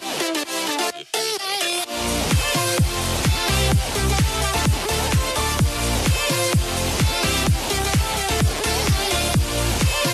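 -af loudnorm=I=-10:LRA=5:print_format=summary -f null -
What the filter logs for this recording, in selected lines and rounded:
Input Integrated:    -20.3 LUFS
Input True Peak:      -7.1 dBTP
Input LRA:             0.7 LU
Input Threshold:     -30.3 LUFS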